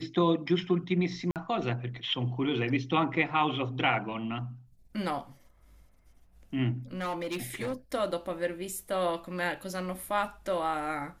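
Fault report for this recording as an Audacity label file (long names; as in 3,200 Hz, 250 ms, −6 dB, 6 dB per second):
1.310000	1.360000	drop-out 48 ms
6.950000	7.740000	clipping −29 dBFS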